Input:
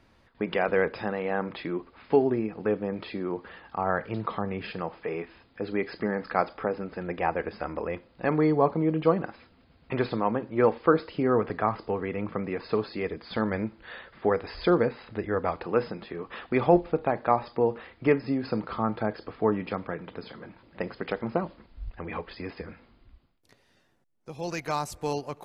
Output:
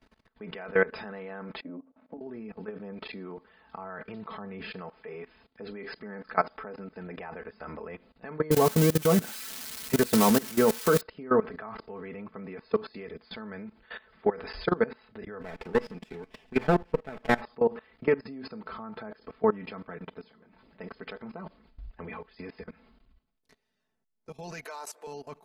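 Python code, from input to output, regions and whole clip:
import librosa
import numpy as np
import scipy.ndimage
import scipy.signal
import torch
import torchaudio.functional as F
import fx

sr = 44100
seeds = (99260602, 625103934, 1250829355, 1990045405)

y = fx.chain(x, sr, fx.double_bandpass(hz=390.0, octaves=1.0),
    fx.over_compress(threshold_db=-33.0, ratio=-0.5), at=(1.61, 2.21))
y = fx.chain(y, sr, fx.crossing_spikes(level_db=-13.5),
    fx.low_shelf(hz=480.0, db=9.0), at=(8.51, 11.01))
y = fx.chain(y, sr, fx.lower_of_two(delay_ms=0.37),
    fx.notch(hz=6200.0, q=17.0), at=(15.41, 17.41))
y = fx.chain(y, sr, fx.highpass(hz=370.0, slope=24),
    fx.band_squash(depth_pct=100), at=(24.65, 25.07))
y = fx.dynamic_eq(y, sr, hz=1500.0, q=2.2, threshold_db=-43.0, ratio=4.0, max_db=4)
y = y + 0.6 * np.pad(y, (int(4.6 * sr / 1000.0), 0))[:len(y)]
y = fx.level_steps(y, sr, step_db=20)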